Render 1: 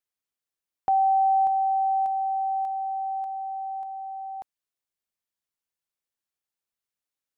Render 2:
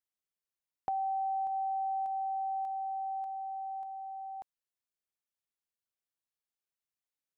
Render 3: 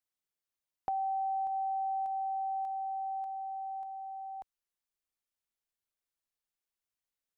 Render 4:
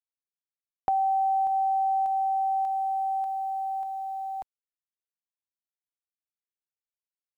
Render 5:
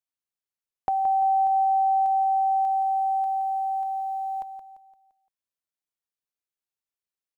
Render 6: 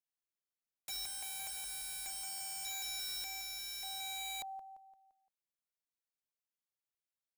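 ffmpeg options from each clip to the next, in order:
-af "acompressor=threshold=-25dB:ratio=6,volume=-6.5dB"
-af "asubboost=boost=2.5:cutoff=68"
-af "acrusher=bits=11:mix=0:aa=0.000001,volume=8.5dB"
-af "aecho=1:1:172|344|516|688|860:0.335|0.144|0.0619|0.0266|0.0115"
-af "aeval=exprs='(mod(35.5*val(0)+1,2)-1)/35.5':c=same,volume=-6.5dB"

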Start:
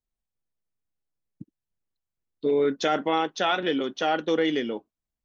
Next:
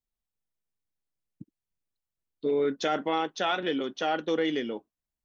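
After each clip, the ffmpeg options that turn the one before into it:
-af "acontrast=30,volume=-8.5dB"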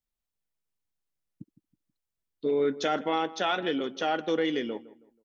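-filter_complex "[0:a]asplit=2[a][b];[b]adelay=161,lowpass=f=1.6k:p=1,volume=-17dB,asplit=2[c][d];[d]adelay=161,lowpass=f=1.6k:p=1,volume=0.35,asplit=2[e][f];[f]adelay=161,lowpass=f=1.6k:p=1,volume=0.35[g];[a][c][e][g]amix=inputs=4:normalize=0"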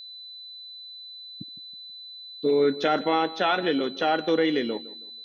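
-filter_complex "[0:a]acrossover=split=4200[a][b];[b]acompressor=threshold=-59dB:ratio=4:attack=1:release=60[c];[a][c]amix=inputs=2:normalize=0,aeval=exprs='val(0)+0.00631*sin(2*PI*4000*n/s)':c=same,volume=4.5dB"

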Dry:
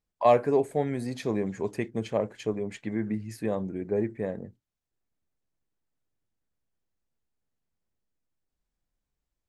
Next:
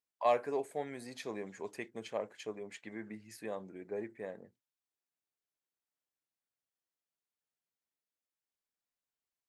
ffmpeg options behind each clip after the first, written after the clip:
-af "highpass=f=800:p=1,volume=-5dB"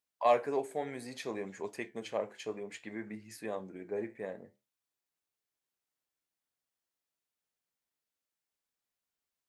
-af "flanger=delay=9.9:depth=7.5:regen=-72:speed=0.62:shape=triangular,volume=7dB"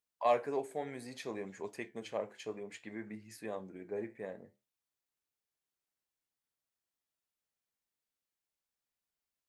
-af "lowshelf=f=110:g=4.5,volume=-3dB"

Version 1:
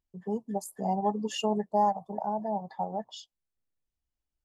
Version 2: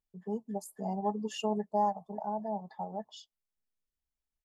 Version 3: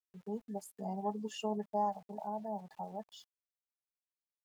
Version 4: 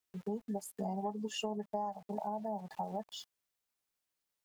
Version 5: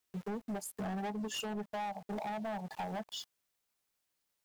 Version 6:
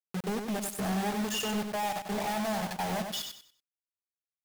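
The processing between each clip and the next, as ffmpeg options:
-af "aecho=1:1:4.7:0.36,volume=-6dB"
-af "highpass=56,aeval=exprs='val(0)*gte(abs(val(0)),0.0015)':c=same,volume=-4.5dB"
-af "acompressor=threshold=-43dB:ratio=6,volume=8.5dB"
-af "asoftclip=type=hard:threshold=-39dB,volume=4dB"
-filter_complex "[0:a]acrusher=bits=6:mix=0:aa=0.000001,asplit=2[a][b];[b]aecho=0:1:95|190|285|380:0.501|0.145|0.0421|0.0122[c];[a][c]amix=inputs=2:normalize=0,volume=6dB"

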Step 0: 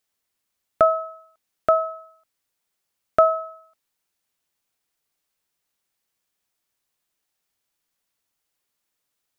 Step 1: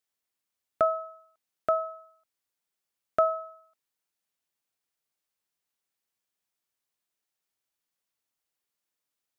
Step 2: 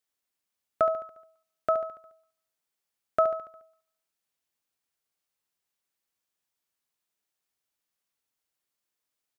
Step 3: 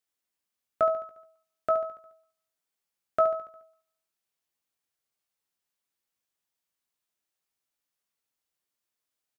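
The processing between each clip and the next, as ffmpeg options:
-af "lowshelf=f=74:g=-6.5,volume=-7.5dB"
-af "aecho=1:1:71|142|213|284|355|426:0.299|0.155|0.0807|0.042|0.0218|0.0114"
-filter_complex "[0:a]asplit=2[a][b];[b]adelay=17,volume=-8.5dB[c];[a][c]amix=inputs=2:normalize=0,volume=-2dB"

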